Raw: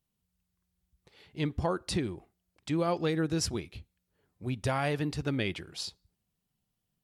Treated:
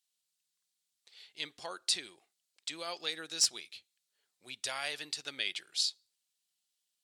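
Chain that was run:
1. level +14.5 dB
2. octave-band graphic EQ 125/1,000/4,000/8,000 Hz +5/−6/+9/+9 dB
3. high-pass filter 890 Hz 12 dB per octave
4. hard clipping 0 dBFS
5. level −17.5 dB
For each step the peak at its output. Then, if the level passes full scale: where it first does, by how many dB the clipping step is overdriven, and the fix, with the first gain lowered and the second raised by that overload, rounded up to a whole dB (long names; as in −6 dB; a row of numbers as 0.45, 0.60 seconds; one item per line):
−4.0, +4.0, +4.5, 0.0, −17.5 dBFS
step 2, 4.5 dB
step 1 +9.5 dB, step 5 −12.5 dB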